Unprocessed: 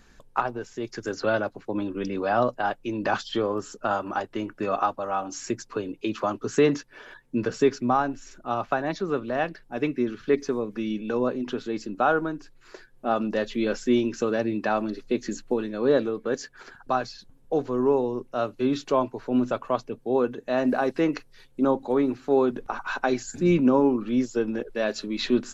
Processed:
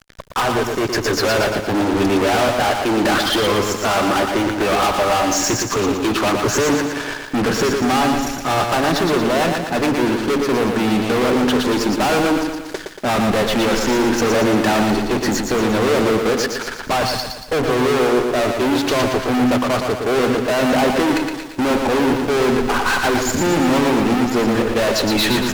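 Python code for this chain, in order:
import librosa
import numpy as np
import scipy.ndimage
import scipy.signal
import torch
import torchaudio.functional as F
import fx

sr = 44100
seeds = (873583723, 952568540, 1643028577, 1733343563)

y = fx.env_lowpass_down(x, sr, base_hz=1700.0, full_db=-18.0)
y = fx.fuzz(y, sr, gain_db=39.0, gate_db=-48.0)
y = fx.echo_crushed(y, sr, ms=116, feedback_pct=55, bits=7, wet_db=-4.5)
y = y * 10.0 ** (-3.0 / 20.0)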